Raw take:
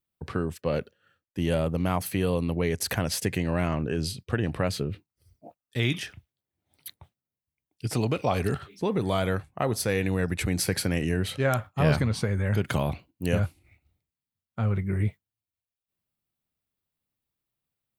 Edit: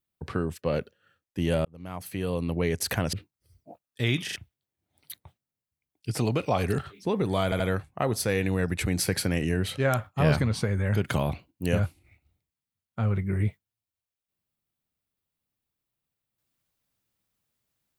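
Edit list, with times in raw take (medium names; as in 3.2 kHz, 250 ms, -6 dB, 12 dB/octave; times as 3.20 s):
1.65–2.63 s: fade in
3.13–4.89 s: delete
6.00 s: stutter in place 0.04 s, 3 plays
9.20 s: stutter 0.08 s, 3 plays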